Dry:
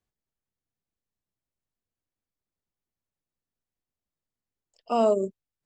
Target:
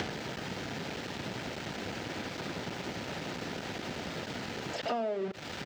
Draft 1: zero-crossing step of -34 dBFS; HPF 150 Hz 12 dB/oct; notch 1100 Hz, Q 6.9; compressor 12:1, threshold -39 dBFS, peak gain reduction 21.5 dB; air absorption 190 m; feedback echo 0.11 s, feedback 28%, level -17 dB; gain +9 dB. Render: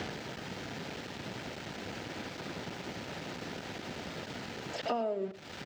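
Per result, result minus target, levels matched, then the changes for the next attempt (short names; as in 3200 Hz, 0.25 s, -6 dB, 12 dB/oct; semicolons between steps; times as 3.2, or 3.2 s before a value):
zero-crossing step: distortion -9 dB; echo-to-direct +8 dB
change: zero-crossing step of -23.5 dBFS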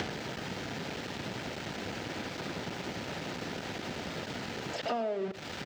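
echo-to-direct +8 dB
change: feedback echo 0.11 s, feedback 28%, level -25 dB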